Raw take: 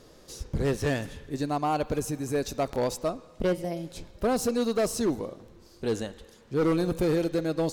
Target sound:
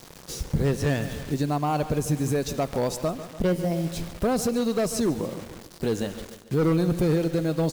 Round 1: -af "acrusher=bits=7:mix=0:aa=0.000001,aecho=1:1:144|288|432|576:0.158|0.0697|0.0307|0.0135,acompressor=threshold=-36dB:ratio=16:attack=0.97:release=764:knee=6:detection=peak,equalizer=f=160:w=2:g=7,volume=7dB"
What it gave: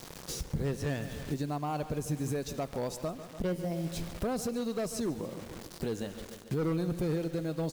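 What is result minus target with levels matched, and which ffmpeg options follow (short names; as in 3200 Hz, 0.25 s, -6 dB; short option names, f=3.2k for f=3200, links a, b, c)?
compressor: peak gain reduction +9 dB
-af "acrusher=bits=7:mix=0:aa=0.000001,aecho=1:1:144|288|432|576:0.158|0.0697|0.0307|0.0135,acompressor=threshold=-26.5dB:ratio=16:attack=0.97:release=764:knee=6:detection=peak,equalizer=f=160:w=2:g=7,volume=7dB"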